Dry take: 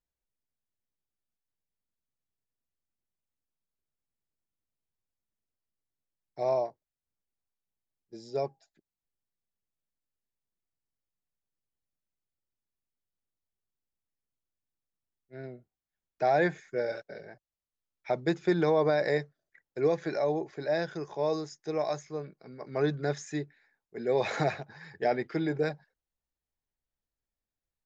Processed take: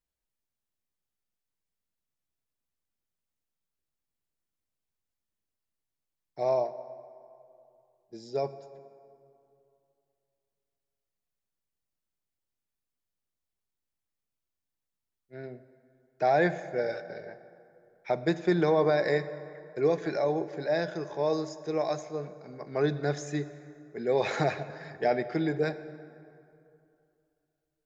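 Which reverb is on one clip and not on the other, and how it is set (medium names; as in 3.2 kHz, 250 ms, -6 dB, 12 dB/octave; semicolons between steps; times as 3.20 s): plate-style reverb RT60 2.7 s, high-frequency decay 0.55×, DRR 12.5 dB; trim +1 dB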